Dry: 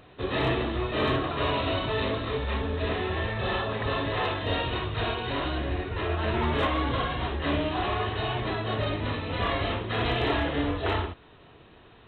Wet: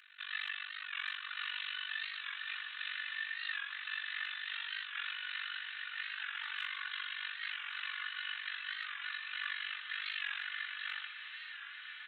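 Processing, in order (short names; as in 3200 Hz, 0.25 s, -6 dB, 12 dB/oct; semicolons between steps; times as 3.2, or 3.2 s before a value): elliptic high-pass 1500 Hz, stop band 60 dB; high shelf 2700 Hz -9 dB; comb 3.4 ms, depth 84%; compressor 2:1, threshold -46 dBFS, peak gain reduction 8.5 dB; AM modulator 48 Hz, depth 95%; diffused feedback echo 1.153 s, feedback 58%, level -8 dB; record warp 45 rpm, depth 100 cents; gain +6.5 dB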